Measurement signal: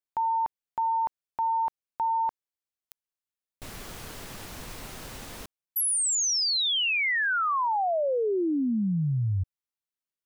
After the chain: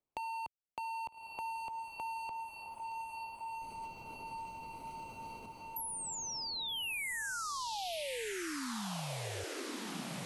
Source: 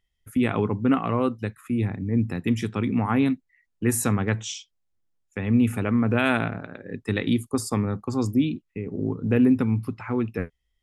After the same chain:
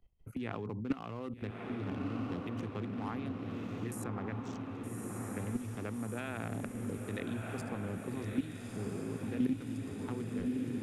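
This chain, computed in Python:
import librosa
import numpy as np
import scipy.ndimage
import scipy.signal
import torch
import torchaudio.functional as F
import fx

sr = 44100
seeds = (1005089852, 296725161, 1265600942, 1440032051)

y = fx.wiener(x, sr, points=25)
y = fx.dynamic_eq(y, sr, hz=160.0, q=0.8, threshold_db=-30.0, ratio=4.0, max_db=-3)
y = fx.level_steps(y, sr, step_db=19)
y = fx.echo_diffused(y, sr, ms=1243, feedback_pct=58, wet_db=-4)
y = fx.band_squash(y, sr, depth_pct=70)
y = y * librosa.db_to_amplitude(-2.5)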